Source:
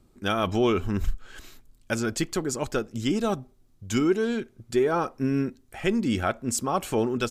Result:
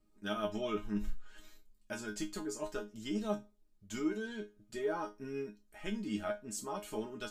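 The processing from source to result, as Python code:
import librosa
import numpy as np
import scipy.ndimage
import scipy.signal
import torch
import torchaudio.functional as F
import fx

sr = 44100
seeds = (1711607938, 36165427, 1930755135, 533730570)

y = fx.resonator_bank(x, sr, root=56, chord='fifth', decay_s=0.22)
y = y * librosa.db_to_amplitude(2.0)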